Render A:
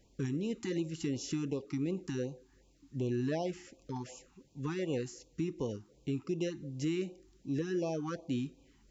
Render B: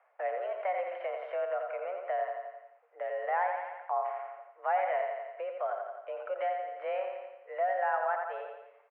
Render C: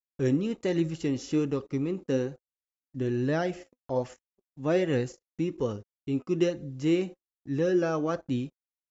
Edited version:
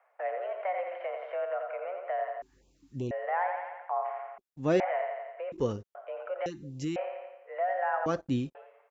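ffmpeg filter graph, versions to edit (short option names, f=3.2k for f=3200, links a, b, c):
-filter_complex "[0:a]asplit=2[a][b];[2:a]asplit=3[c][d][e];[1:a]asplit=6[f][g][h][i][j][k];[f]atrim=end=2.422[l];[a]atrim=start=2.418:end=3.112[m];[g]atrim=start=3.108:end=4.382[n];[c]atrim=start=4.378:end=4.802[o];[h]atrim=start=4.798:end=5.522[p];[d]atrim=start=5.518:end=5.952[q];[i]atrim=start=5.948:end=6.462[r];[b]atrim=start=6.458:end=6.962[s];[j]atrim=start=6.958:end=8.062[t];[e]atrim=start=8.058:end=8.552[u];[k]atrim=start=8.548[v];[l][m]acrossfade=d=0.004:c1=hsin:c2=hsin[w];[w][n]acrossfade=d=0.004:c1=hsin:c2=hsin[x];[x][o]acrossfade=d=0.004:c1=hsin:c2=hsin[y];[y][p]acrossfade=d=0.004:c1=hsin:c2=hsin[z];[z][q]acrossfade=d=0.004:c1=hsin:c2=hsin[aa];[aa][r]acrossfade=d=0.004:c1=hsin:c2=hsin[ab];[ab][s]acrossfade=d=0.004:c1=hsin:c2=hsin[ac];[ac][t]acrossfade=d=0.004:c1=hsin:c2=hsin[ad];[ad][u]acrossfade=d=0.004:c1=hsin:c2=hsin[ae];[ae][v]acrossfade=d=0.004:c1=hsin:c2=hsin"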